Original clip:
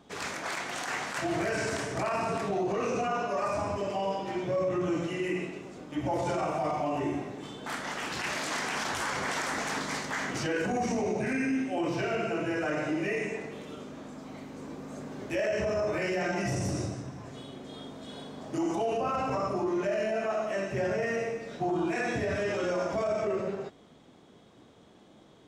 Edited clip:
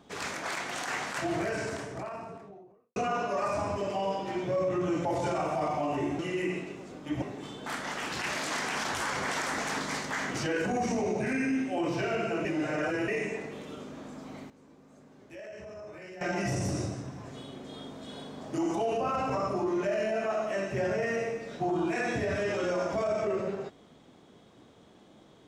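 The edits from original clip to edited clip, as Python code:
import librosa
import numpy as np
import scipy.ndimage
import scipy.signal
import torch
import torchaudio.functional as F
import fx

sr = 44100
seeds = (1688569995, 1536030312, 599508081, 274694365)

y = fx.studio_fade_out(x, sr, start_s=1.05, length_s=1.91)
y = fx.edit(y, sr, fx.move(start_s=5.05, length_s=1.03, to_s=7.22),
    fx.reverse_span(start_s=12.45, length_s=0.63),
    fx.fade_down_up(start_s=14.24, length_s=2.23, db=-15.0, fade_s=0.26, curve='log'), tone=tone)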